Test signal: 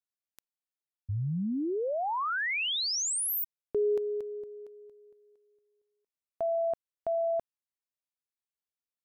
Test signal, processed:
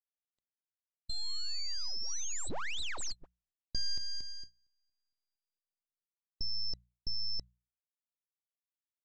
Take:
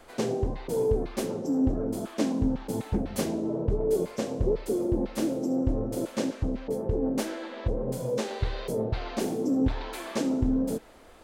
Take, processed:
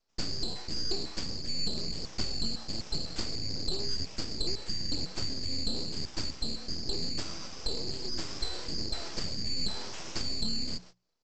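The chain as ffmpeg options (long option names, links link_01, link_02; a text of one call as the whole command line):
ffmpeg -i in.wav -af "afftfilt=real='real(if(lt(b,920),b+92*(1-2*mod(floor(b/92),2)),b),0)':imag='imag(if(lt(b,920),b+92*(1-2*mod(floor(b/92),2)),b),0)':win_size=2048:overlap=0.75,agate=range=-28dB:threshold=-39dB:ratio=16:release=374:detection=peak,acompressor=threshold=-36dB:ratio=1.5:attack=35:release=106:knee=6:detection=peak,aresample=16000,aeval=exprs='abs(val(0))':channel_layout=same,aresample=44100,bandreject=frequency=60:width_type=h:width=6,bandreject=frequency=120:width_type=h:width=6,bandreject=frequency=180:width_type=h:width=6" out.wav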